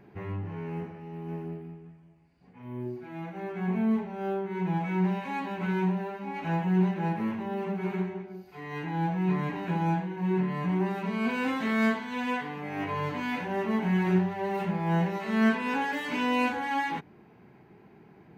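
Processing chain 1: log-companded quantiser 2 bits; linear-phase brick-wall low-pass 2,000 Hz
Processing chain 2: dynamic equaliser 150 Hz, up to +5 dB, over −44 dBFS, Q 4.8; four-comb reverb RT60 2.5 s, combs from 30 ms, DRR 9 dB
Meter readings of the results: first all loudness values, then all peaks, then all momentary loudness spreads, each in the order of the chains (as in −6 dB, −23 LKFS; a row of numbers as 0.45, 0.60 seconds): −27.5, −29.0 LKFS; −21.0, −14.0 dBFS; 4, 13 LU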